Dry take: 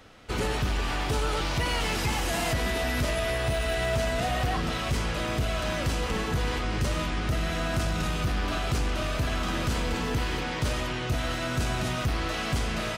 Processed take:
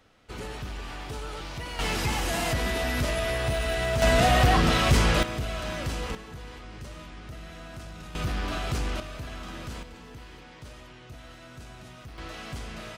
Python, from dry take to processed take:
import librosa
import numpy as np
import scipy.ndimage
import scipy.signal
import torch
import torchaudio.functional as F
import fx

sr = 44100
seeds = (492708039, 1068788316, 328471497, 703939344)

y = fx.gain(x, sr, db=fx.steps((0.0, -9.0), (1.79, 0.0), (4.02, 7.5), (5.23, -3.5), (6.15, -14.0), (8.15, -2.0), (9.0, -10.0), (9.83, -17.0), (12.18, -9.5)))